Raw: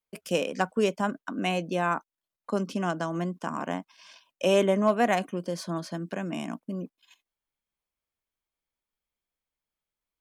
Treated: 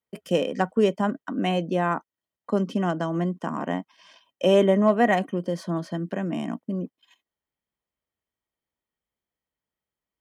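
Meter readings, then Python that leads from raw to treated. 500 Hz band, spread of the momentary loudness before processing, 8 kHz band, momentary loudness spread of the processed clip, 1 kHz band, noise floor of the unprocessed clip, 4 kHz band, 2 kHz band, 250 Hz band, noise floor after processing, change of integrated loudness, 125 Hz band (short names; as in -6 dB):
+4.0 dB, 12 LU, n/a, 11 LU, +2.0 dB, under -85 dBFS, +1.0 dB, +1.0 dB, +5.0 dB, under -85 dBFS, +4.0 dB, +5.0 dB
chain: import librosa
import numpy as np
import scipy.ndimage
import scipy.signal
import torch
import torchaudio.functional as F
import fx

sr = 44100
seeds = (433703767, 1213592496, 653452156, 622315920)

y = scipy.signal.sosfilt(scipy.signal.butter(2, 62.0, 'highpass', fs=sr, output='sos'), x)
y = fx.tilt_shelf(y, sr, db=5.5, hz=1300.0)
y = fx.small_body(y, sr, hz=(1900.0, 3100.0), ring_ms=45, db=13)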